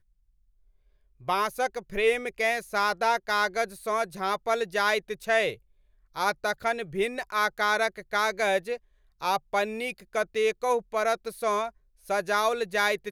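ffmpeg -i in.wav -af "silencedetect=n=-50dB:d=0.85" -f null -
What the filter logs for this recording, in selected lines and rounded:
silence_start: 0.00
silence_end: 1.20 | silence_duration: 1.20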